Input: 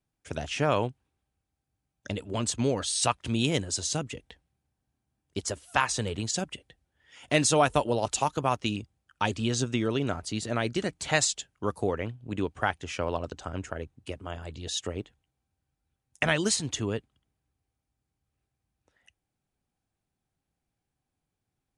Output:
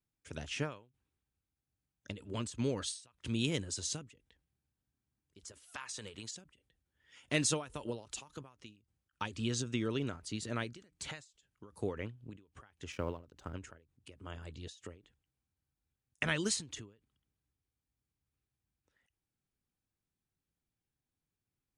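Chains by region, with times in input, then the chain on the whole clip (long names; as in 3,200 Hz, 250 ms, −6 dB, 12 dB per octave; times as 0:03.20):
0:05.52–0:06.36: low-shelf EQ 350 Hz −12 dB + downward compressor 4 to 1, threshold −33 dBFS
0:12.92–0:13.54: mu-law and A-law mismatch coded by A + tilt shelving filter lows +4 dB, about 1,400 Hz
whole clip: parametric band 710 Hz −8 dB 0.59 octaves; every ending faded ahead of time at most 150 dB per second; level −6.5 dB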